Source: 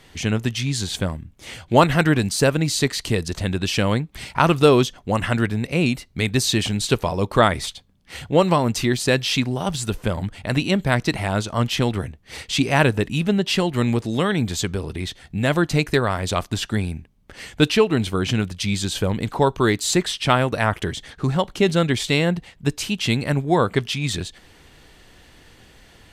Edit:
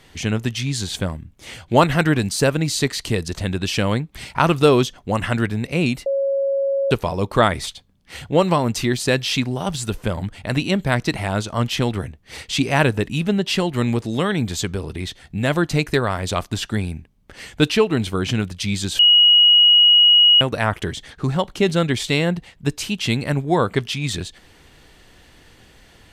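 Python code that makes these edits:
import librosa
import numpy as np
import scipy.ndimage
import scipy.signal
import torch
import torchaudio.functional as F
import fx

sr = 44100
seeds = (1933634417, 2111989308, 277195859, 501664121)

y = fx.edit(x, sr, fx.bleep(start_s=6.06, length_s=0.85, hz=550.0, db=-17.0),
    fx.bleep(start_s=18.99, length_s=1.42, hz=2900.0, db=-8.5), tone=tone)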